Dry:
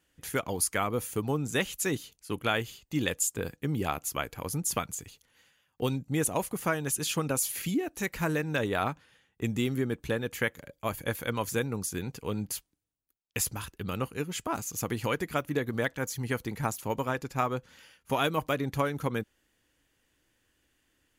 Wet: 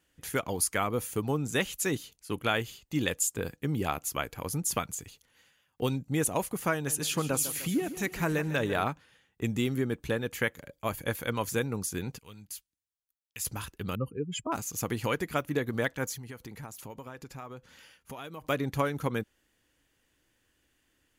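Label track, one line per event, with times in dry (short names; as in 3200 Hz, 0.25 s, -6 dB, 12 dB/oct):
6.740000	8.840000	feedback echo 0.151 s, feedback 53%, level -13 dB
12.180000	13.450000	passive tone stack bass-middle-treble 5-5-5
13.950000	14.520000	spectral contrast raised exponent 2.3
16.150000	18.440000	compressor 4:1, threshold -41 dBFS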